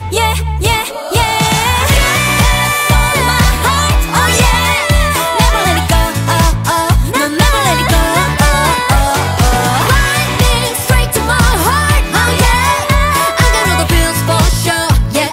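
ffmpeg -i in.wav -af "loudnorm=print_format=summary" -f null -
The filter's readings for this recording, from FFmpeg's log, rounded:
Input Integrated:    -11.1 LUFS
Input True Peak:      -1.8 dBTP
Input LRA:             0.7 LU
Input Threshold:     -21.1 LUFS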